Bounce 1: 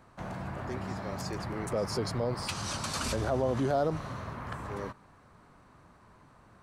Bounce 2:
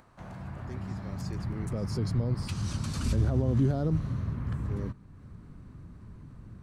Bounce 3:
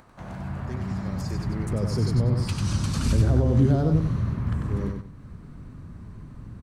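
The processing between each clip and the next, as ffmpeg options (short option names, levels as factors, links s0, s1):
-af "acompressor=mode=upward:threshold=0.00447:ratio=2.5,asubboost=boost=10:cutoff=240,volume=0.473"
-af "aecho=1:1:95|190|285:0.562|0.141|0.0351,volume=1.78"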